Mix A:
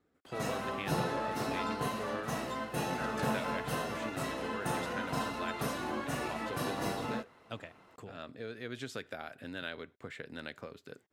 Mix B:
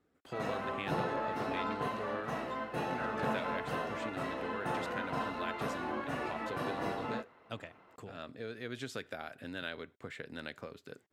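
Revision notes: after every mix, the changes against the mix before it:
background: add tone controls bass -5 dB, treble -15 dB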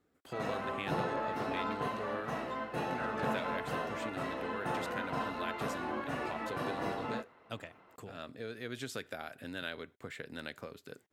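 speech: add high shelf 9700 Hz +11.5 dB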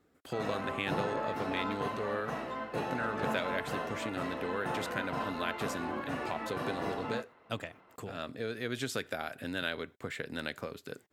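speech +5.5 dB

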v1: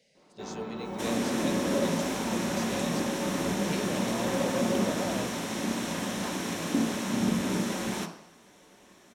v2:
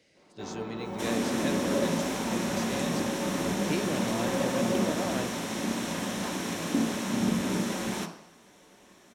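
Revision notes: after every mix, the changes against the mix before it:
speech: remove fixed phaser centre 320 Hz, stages 6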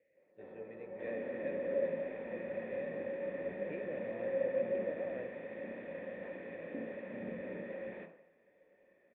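master: add vocal tract filter e

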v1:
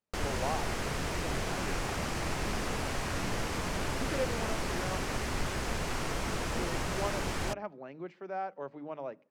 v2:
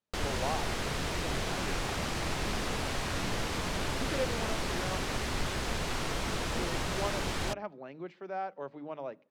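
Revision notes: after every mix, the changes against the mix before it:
master: add bell 3700 Hz +5 dB 0.67 oct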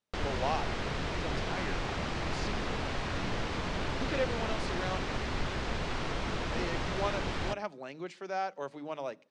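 speech: remove tape spacing loss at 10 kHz 30 dB; background: add air absorption 120 m

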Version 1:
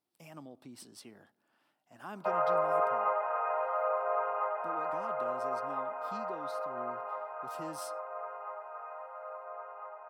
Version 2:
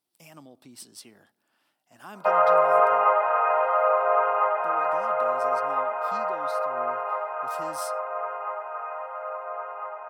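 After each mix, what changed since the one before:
background +9.0 dB; master: add high shelf 2600 Hz +9 dB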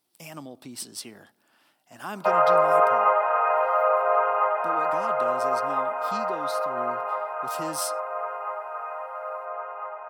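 speech +8.0 dB

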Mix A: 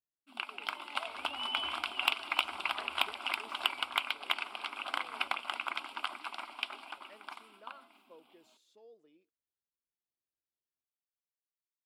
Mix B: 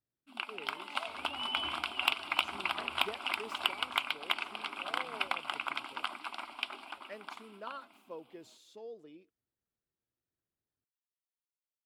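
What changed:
speech +10.0 dB; second sound: add bell 200 Hz +7.5 dB 1.8 oct; master: add bell 120 Hz +7.5 dB 1.9 oct

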